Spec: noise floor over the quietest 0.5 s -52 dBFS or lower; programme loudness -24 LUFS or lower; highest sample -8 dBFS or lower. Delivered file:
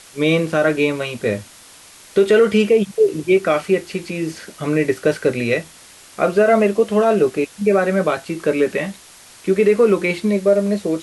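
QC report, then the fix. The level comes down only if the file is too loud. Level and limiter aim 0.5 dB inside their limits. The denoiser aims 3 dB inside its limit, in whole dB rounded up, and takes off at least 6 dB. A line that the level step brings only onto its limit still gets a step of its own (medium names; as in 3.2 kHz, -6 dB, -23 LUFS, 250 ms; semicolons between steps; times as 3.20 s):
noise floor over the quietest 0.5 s -44 dBFS: fail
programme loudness -18.0 LUFS: fail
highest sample -5.5 dBFS: fail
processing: noise reduction 6 dB, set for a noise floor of -44 dBFS; trim -6.5 dB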